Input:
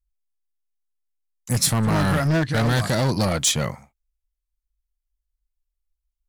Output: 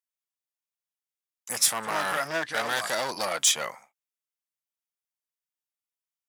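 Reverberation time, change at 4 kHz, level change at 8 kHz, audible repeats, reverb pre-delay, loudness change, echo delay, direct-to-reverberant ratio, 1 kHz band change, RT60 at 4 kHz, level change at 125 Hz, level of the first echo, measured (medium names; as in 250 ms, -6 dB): no reverb, -2.0 dB, -1.0 dB, no echo, no reverb, -5.0 dB, no echo, no reverb, -2.0 dB, no reverb, -29.0 dB, no echo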